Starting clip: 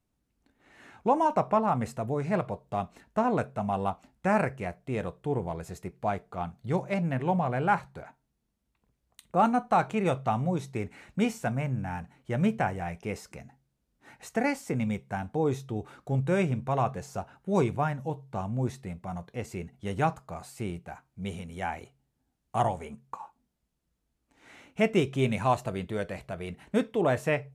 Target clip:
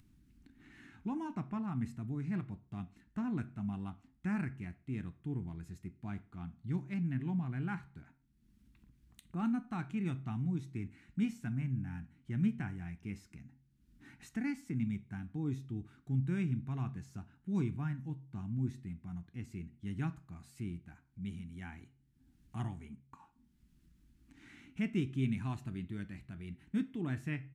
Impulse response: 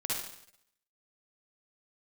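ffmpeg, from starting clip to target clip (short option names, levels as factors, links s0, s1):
-filter_complex "[0:a]firequalizer=gain_entry='entry(300,0);entry(520,-29);entry(750,-19);entry(1600,-7);entry(7100,-10)':delay=0.05:min_phase=1,acompressor=mode=upward:threshold=0.00708:ratio=2.5,asplit=2[s0][s1];[1:a]atrim=start_sample=2205,asetrate=79380,aresample=44100,highshelf=f=4700:g=-10.5[s2];[s1][s2]afir=irnorm=-1:irlink=0,volume=0.251[s3];[s0][s3]amix=inputs=2:normalize=0,volume=0.501"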